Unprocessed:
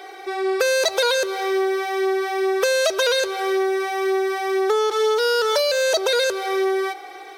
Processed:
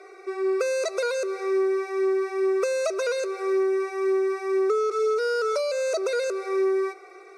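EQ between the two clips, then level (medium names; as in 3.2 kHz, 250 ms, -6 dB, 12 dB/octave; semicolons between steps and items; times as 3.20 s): Butterworth band-stop 1.7 kHz, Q 4.4; cabinet simulation 150–9700 Hz, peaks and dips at 380 Hz +7 dB, 660 Hz +4 dB, 1.2 kHz +5 dB, 2.6 kHz +9 dB; static phaser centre 850 Hz, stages 6; -7.0 dB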